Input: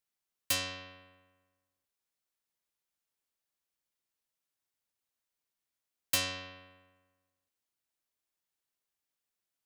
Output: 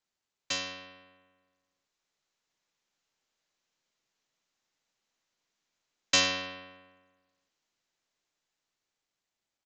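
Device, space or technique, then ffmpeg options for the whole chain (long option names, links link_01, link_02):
Bluetooth headset: -af "highpass=frequency=120:width=0.5412,highpass=frequency=120:width=1.3066,dynaudnorm=framelen=430:gausssize=9:maxgain=8dB,aresample=16000,aresample=44100" -ar 16000 -c:a sbc -b:a 64k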